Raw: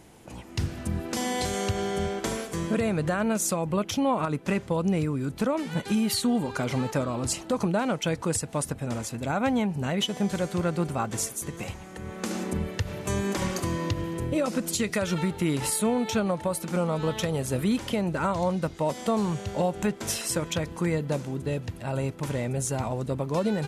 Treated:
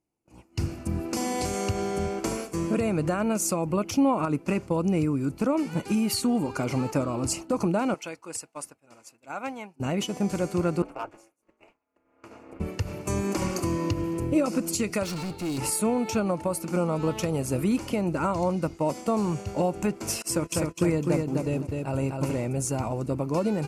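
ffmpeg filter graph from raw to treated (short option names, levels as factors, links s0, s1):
-filter_complex "[0:a]asettb=1/sr,asplit=3[s0][s1][s2];[s0]atrim=end=7.944[s3];[s1]atrim=start=7.94:end=9.8,asetpts=PTS-STARTPTS,afade=t=in:d=0.004:c=qsin,afade=t=out:st=1.856:d=0.004:c=qsin,highpass=f=1300:p=1,highshelf=f=4200:g=-5.5[s4];[s2]atrim=start=9.796[s5];[s3][s4]acrossfade=d=0.004:c1=hsin:c2=qsin[s6];[s6][s5]acrossfade=d=0.004:c1=qsin:c2=hsin,asettb=1/sr,asplit=3[s7][s8][s9];[s7]atrim=end=10.824[s10];[s8]atrim=start=10.82:end=12.6,asetpts=PTS-STARTPTS,afade=t=in:d=0.004:c=qsin,afade=t=out:st=1.776:d=0.004:c=qsin,acrossover=split=350 3000:gain=0.0891 1 0.141[s11][s12][s13];[s11][s12][s13]amix=inputs=3:normalize=0,asoftclip=type=hard:threshold=0.0668,aeval=exprs='val(0)*sin(2*PI*110*n/s)':c=same[s14];[s9]atrim=start=12.596[s15];[s10][s14]acrossfade=d=0.004:c1=hsin:c2=qsin[s16];[s16][s15]acrossfade=d=0.004:c1=qsin:c2=hsin,asettb=1/sr,asplit=3[s17][s18][s19];[s17]atrim=end=15.034[s20];[s18]atrim=start=15.03:end=15.58,asetpts=PTS-STARTPTS,afade=t=in:d=0.004:c=qsin,afade=t=out:st=0.546:d=0.004:c=qsin,equalizer=f=4100:w=2.5:g=14,asoftclip=type=hard:threshold=0.0335[s21];[s19]atrim=start=15.576[s22];[s20][s21]acrossfade=d=0.004:c1=hsin:c2=qsin[s23];[s23][s22]acrossfade=d=0.004:c1=qsin:c2=hsin,asettb=1/sr,asplit=3[s24][s25][s26];[s24]atrim=end=20.224[s27];[s25]atrim=start=20.22:end=22.46,asetpts=PTS-STARTPTS,afade=t=in:d=0.004:c=qsin,afade=t=out:st=2.236:d=0.004:c=qsin,agate=range=0.0562:threshold=0.0178:ratio=16:release=100:detection=peak,aecho=1:1:253|506|759:0.668|0.147|0.0323,atrim=end_sample=98784[s28];[s26]atrim=start=22.456[s29];[s27][s28]acrossfade=d=0.004:c1=hsin:c2=qsin[s30];[s30][s29]acrossfade=d=0.004:c1=qsin:c2=hsin,agate=range=0.0224:threshold=0.0251:ratio=3:detection=peak,superequalizer=6b=1.78:11b=0.501:13b=0.355"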